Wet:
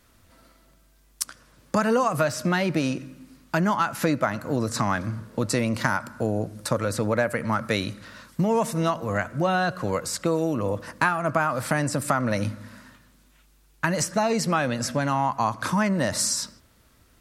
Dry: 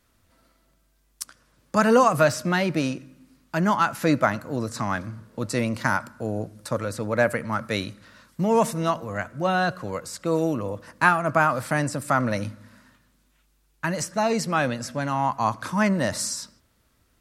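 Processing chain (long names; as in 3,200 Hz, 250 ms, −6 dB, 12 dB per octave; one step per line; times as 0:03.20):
downward compressor 4 to 1, threshold −27 dBFS, peak gain reduction 12.5 dB
level +6.5 dB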